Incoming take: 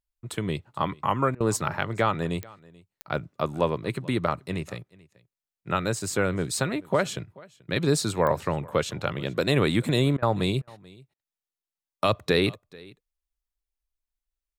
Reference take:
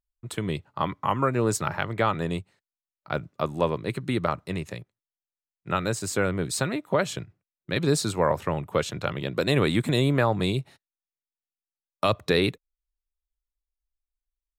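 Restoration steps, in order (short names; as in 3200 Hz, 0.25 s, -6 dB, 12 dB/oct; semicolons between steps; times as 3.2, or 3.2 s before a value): de-click; interpolate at 1.35/10.17/10.62/11.14, 53 ms; inverse comb 0.434 s -23.5 dB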